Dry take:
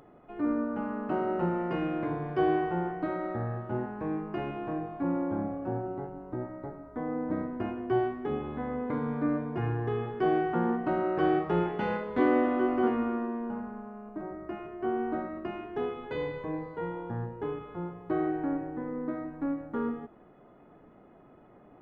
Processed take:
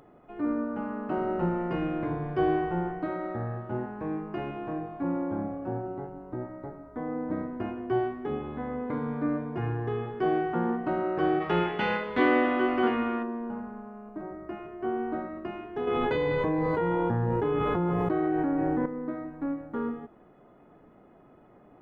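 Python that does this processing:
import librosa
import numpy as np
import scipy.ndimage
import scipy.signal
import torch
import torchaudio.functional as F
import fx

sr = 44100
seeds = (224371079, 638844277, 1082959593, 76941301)

y = fx.low_shelf(x, sr, hz=87.0, db=11.5, at=(1.17, 2.99))
y = fx.peak_eq(y, sr, hz=3000.0, db=11.5, octaves=2.3, at=(11.4, 13.22), fade=0.02)
y = fx.env_flatten(y, sr, amount_pct=100, at=(15.87, 18.86))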